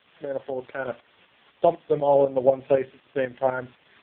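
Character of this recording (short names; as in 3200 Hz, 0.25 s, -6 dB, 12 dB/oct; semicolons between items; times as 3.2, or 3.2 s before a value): a quantiser's noise floor 8-bit, dither triangular; tremolo saw up 4 Hz, depth 60%; AMR-NB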